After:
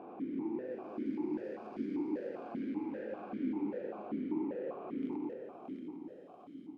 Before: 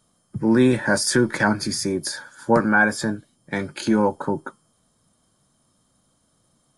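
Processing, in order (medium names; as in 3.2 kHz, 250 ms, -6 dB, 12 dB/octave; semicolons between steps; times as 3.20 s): spectral blur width 887 ms; resonant low shelf 550 Hz +11.5 dB, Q 1.5; peak limiter -31.5 dBFS, peak gain reduction 28 dB; level held to a coarse grid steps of 23 dB; integer overflow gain 38.5 dB; overdrive pedal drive 25 dB, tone 1.1 kHz, clips at -38.5 dBFS; ever faster or slower copies 325 ms, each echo -1 st, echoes 3, each echo -6 dB; delay 172 ms -7 dB; on a send at -5.5 dB: reverberation RT60 2.1 s, pre-delay 66 ms; on the sum: stepped vowel filter 5.1 Hz; trim +13 dB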